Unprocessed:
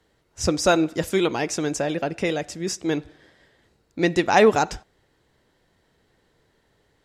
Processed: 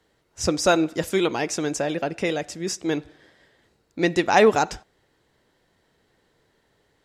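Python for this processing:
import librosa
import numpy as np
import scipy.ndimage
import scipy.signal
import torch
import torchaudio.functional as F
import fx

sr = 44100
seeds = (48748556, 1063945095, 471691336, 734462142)

y = fx.low_shelf(x, sr, hz=130.0, db=-5.0)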